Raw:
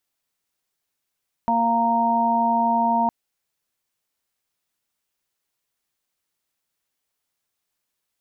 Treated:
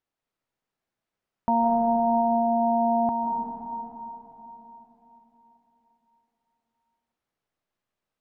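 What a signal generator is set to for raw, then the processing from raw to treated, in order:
steady harmonic partials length 1.61 s, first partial 232 Hz, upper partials −19/1/5 dB, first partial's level −24 dB
low-pass filter 1,100 Hz 6 dB per octave
comb and all-pass reverb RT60 4 s, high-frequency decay 0.8×, pre-delay 120 ms, DRR 0 dB

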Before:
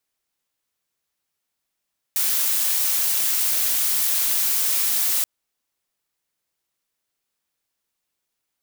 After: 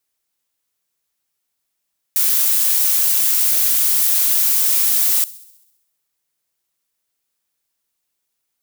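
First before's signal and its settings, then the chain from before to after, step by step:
noise blue, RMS −21 dBFS 3.08 s
high-shelf EQ 5,700 Hz +6 dB
delay with a high-pass on its return 66 ms, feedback 62%, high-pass 3,300 Hz, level −20 dB

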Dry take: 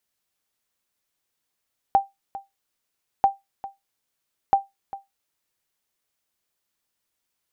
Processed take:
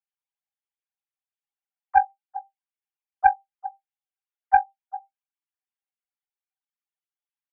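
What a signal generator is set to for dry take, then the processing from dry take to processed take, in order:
ping with an echo 788 Hz, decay 0.18 s, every 1.29 s, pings 3, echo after 0.40 s, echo −17 dB −8.5 dBFS
three sine waves on the formant tracks
comb filter 5 ms, depth 89%
highs frequency-modulated by the lows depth 0.12 ms

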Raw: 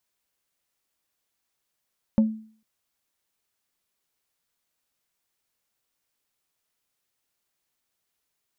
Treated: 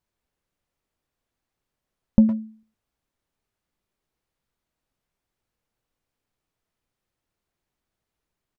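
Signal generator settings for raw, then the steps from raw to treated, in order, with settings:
struck wood plate, length 0.45 s, lowest mode 219 Hz, decay 0.47 s, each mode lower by 11.5 dB, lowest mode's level −12.5 dB
spectral tilt −3 dB per octave
far-end echo of a speakerphone 110 ms, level −7 dB

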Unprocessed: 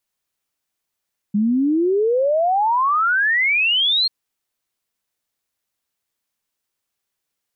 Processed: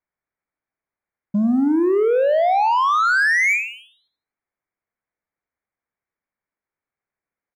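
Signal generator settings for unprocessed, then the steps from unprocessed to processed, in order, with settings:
exponential sine sweep 200 Hz → 4,300 Hz 2.74 s −14.5 dBFS
Chebyshev low-pass filter 2,300 Hz, order 6
leveller curve on the samples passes 1
on a send: repeating echo 83 ms, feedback 26%, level −11 dB

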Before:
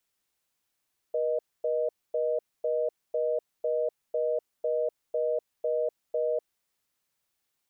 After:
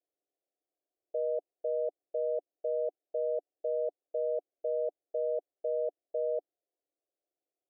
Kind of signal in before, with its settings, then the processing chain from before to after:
call progress tone reorder tone, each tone −27.5 dBFS 5.34 s
Chebyshev band-pass filter 290–730 Hz, order 4
brickwall limiter −25 dBFS

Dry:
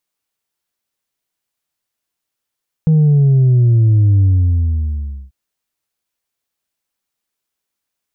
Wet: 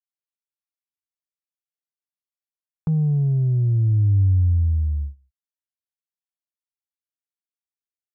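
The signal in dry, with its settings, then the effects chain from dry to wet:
bass drop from 160 Hz, over 2.44 s, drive 2 dB, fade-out 1.10 s, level −8 dB
noise gate −24 dBFS, range −24 dB
octave-band graphic EQ 125/250/500 Hz −6/−10/−12 dB

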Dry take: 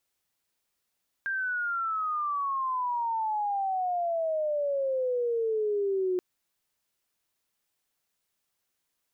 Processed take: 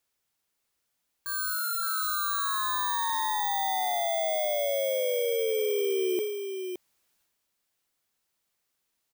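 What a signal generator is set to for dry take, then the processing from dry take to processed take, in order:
glide logarithmic 1,600 Hz → 360 Hz −27.5 dBFS → −24.5 dBFS 4.93 s
samples in bit-reversed order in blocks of 16 samples
on a send: single-tap delay 567 ms −6.5 dB
on the sum: transient designer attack −4 dB, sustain +6 dB

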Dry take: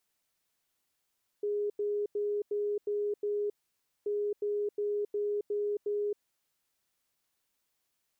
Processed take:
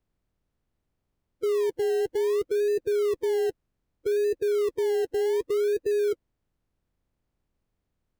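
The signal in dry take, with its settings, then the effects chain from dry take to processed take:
beeps in groups sine 413 Hz, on 0.27 s, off 0.09 s, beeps 6, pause 0.56 s, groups 2, −28.5 dBFS
spectral magnitudes quantised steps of 30 dB
spectral tilt −5 dB per octave
in parallel at −10 dB: sample-and-hold swept by an LFO 29×, swing 60% 0.64 Hz

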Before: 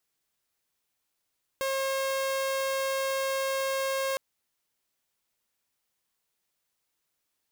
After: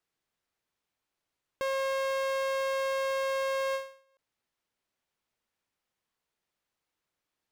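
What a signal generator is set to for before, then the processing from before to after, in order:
tone saw 538 Hz −24.5 dBFS 2.56 s
low-pass filter 2,600 Hz 6 dB per octave
every ending faded ahead of time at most 130 dB per second

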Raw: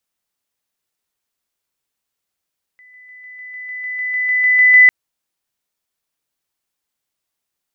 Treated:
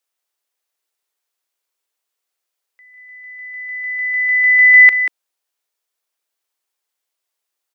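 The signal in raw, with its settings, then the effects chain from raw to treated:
level staircase 2,000 Hz −43 dBFS, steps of 3 dB, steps 14, 0.15 s 0.00 s
high-pass filter 360 Hz 24 dB per octave
on a send: single-tap delay 187 ms −9 dB

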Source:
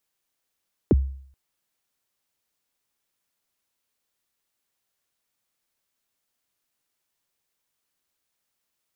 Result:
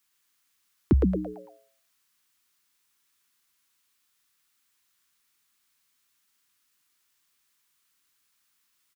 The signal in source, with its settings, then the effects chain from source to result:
synth kick length 0.43 s, from 480 Hz, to 67 Hz, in 30 ms, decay 0.58 s, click off, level −11 dB
drawn EQ curve 330 Hz 0 dB, 520 Hz −13 dB, 1,100 Hz +6 dB
on a send: echo with shifted repeats 112 ms, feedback 38%, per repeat +120 Hz, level −4 dB

